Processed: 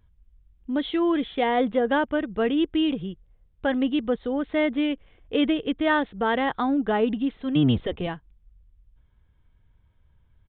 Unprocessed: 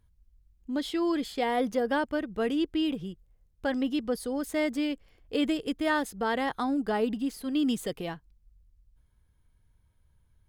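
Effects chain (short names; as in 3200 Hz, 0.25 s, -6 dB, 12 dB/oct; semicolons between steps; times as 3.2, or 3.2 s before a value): 7.55–8.07 octaver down 1 oct, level -1 dB; downsampling 8000 Hz; gain +5 dB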